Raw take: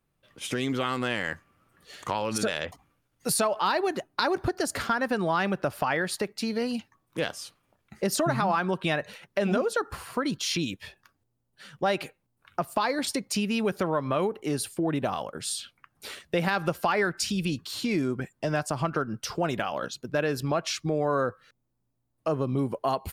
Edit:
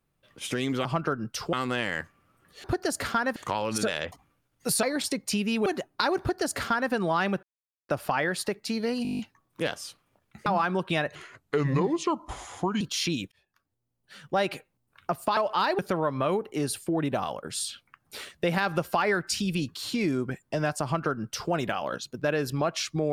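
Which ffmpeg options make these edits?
-filter_complex "[0:a]asplit=22[a][b][c][d][e][f][g][h][i][j][k][l][m][n][o][p][q][r][s][t][u][v];[a]atrim=end=0.852[w];[b]atrim=start=18.738:end=19.422[x];[c]atrim=start=0.848:end=1.962[y];[d]atrim=start=4.388:end=5.112[z];[e]atrim=start=1.958:end=3.432[aa];[f]atrim=start=12.858:end=13.692[ab];[g]atrim=start=3.848:end=5.62,asetpts=PTS-STARTPTS,afade=t=out:st=1.768:d=0.004:c=hsin,apad=pad_dur=0.46[ac];[h]atrim=start=5.62:end=6.782,asetpts=PTS-STARTPTS,afade=t=in:d=0.004:c=hsin[ad];[i]atrim=start=6.758:end=6.782[ae];[j]atrim=start=6.758:end=6.782[af];[k]atrim=start=6.758:end=6.782[ag];[l]atrim=start=6.758:end=6.782[ah];[m]atrim=start=6.758:end=6.782[ai];[n]atrim=start=6.758:end=6.782[aj];[o]atrim=start=6.758:end=6.782[ak];[p]atrim=start=6.758:end=8.032[al];[q]atrim=start=8.398:end=9.094[am];[r]atrim=start=9.09:end=10.3,asetpts=PTS-STARTPTS,asetrate=32193,aresample=44100,atrim=end_sample=73097,asetpts=PTS-STARTPTS[an];[s]atrim=start=10.296:end=10.81,asetpts=PTS-STARTPTS,afade=t=out:st=0.51:d=0.004:c=hsin[ao];[t]atrim=start=10.81:end=12.862,asetpts=PTS-STARTPTS,afade=t=in:d=0.88[ap];[u]atrim=start=3.428:end=3.852[aq];[v]atrim=start=13.688[ar];[w][x]acrossfade=d=0.004:c1=hsin:c2=hsin[as];[as][y]acrossfade=d=0.004:c1=hsin:c2=hsin[at];[at][z]acrossfade=d=0.004:c1=hsin:c2=hsin[au];[au][aa]acrossfade=d=0.004:c1=hsin:c2=hsin[av];[av][ab]acrossfade=d=0.004:c1=hsin:c2=hsin[aw];[ac][ad]concat=n=2:v=0:a=1[ax];[aw][ax]acrossfade=d=0.004:c1=hsin:c2=hsin[ay];[ay][ae]acrossfade=d=0.004:c1=hsin:c2=hsin[az];[az][af]acrossfade=d=0.004:c1=hsin:c2=hsin[ba];[ba][ag]acrossfade=d=0.004:c1=hsin:c2=hsin[bb];[bb][ah]acrossfade=d=0.004:c1=hsin:c2=hsin[bc];[bc][ai]acrossfade=d=0.004:c1=hsin:c2=hsin[bd];[bd][aj]acrossfade=d=0.004:c1=hsin:c2=hsin[be];[be][ak]acrossfade=d=0.004:c1=hsin:c2=hsin[bf];[bf][al]acrossfade=d=0.004:c1=hsin:c2=hsin[bg];[bg][am]acrossfade=d=0.004:c1=hsin:c2=hsin[bh];[bh][an]acrossfade=d=0.004:c1=hsin:c2=hsin[bi];[ao][ap]concat=n=2:v=0:a=1[bj];[bi][bj]acrossfade=d=0.004:c1=hsin:c2=hsin[bk];[bk][aq]acrossfade=d=0.004:c1=hsin:c2=hsin[bl];[bl][ar]acrossfade=d=0.004:c1=hsin:c2=hsin"

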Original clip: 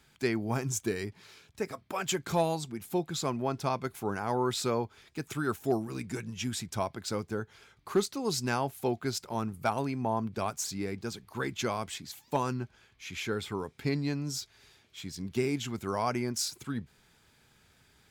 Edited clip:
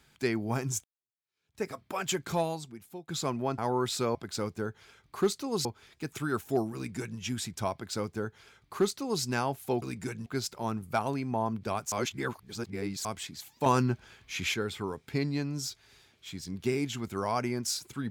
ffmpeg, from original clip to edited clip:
-filter_complex "[0:a]asplit=12[a][b][c][d][e][f][g][h][i][j][k][l];[a]atrim=end=0.84,asetpts=PTS-STARTPTS,afade=t=out:st=0.836:d=0.004:c=hsin[m];[b]atrim=start=0.84:end=3.08,asetpts=PTS-STARTPTS,afade=t=in:d=0.77:c=exp,afade=t=out:st=1.36:d=0.88:silence=0.105925[n];[c]atrim=start=3.08:end=3.582,asetpts=PTS-STARTPTS,afade=t=in:d=0.004:c=hsin:silence=0.105925[o];[d]atrim=start=4.228:end=4.802[p];[e]atrim=start=6.878:end=8.382[q];[f]atrim=start=4.798:end=8.972[r];[g]atrim=start=5.898:end=6.342[s];[h]atrim=start=8.968:end=10.632[t];[i]atrim=start=10.628:end=11.762,asetpts=PTS-STARTPTS,areverse[u];[j]atrim=start=11.758:end=12.372[v];[k]atrim=start=12.368:end=13.252,asetpts=PTS-STARTPTS,volume=7dB[w];[l]atrim=start=13.248[x];[m][n][o]concat=n=3:v=0:a=1[y];[y][p]acrossfade=d=0.004:c1=hsin:c2=hsin[z];[z][q]acrossfade=d=0.004:c1=hsin:c2=hsin[aa];[aa][r]acrossfade=d=0.004:c1=hsin:c2=hsin[ab];[ab][s]acrossfade=d=0.004:c1=hsin:c2=hsin[ac];[ac][t]acrossfade=d=0.004:c1=hsin:c2=hsin[ad];[ad][u]acrossfade=d=0.004:c1=hsin:c2=hsin[ae];[ae][v]acrossfade=d=0.004:c1=hsin:c2=hsin[af];[af][w]acrossfade=d=0.004:c1=hsin:c2=hsin[ag];[ag][x]acrossfade=d=0.004:c1=hsin:c2=hsin"

